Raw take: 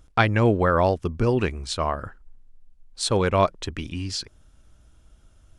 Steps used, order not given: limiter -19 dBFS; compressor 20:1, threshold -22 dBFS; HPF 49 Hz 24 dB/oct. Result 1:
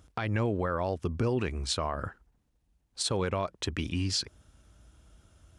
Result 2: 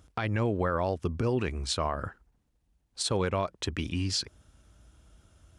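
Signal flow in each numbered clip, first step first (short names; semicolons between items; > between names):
compressor > HPF > limiter; compressor > limiter > HPF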